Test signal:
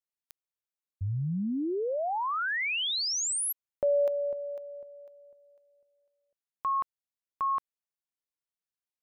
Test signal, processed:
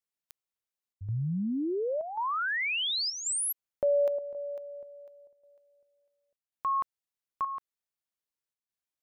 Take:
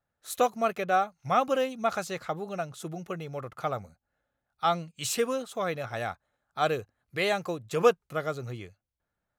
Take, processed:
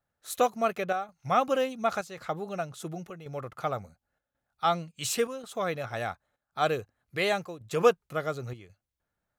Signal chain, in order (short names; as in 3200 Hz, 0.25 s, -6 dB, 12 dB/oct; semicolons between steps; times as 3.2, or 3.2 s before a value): chopper 0.92 Hz, depth 60%, duty 85%